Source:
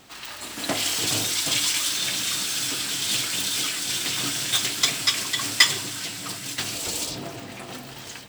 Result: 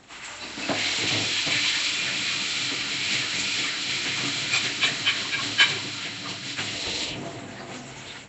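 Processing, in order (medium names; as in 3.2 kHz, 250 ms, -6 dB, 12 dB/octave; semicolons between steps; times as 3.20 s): knee-point frequency compression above 1.1 kHz 1.5:1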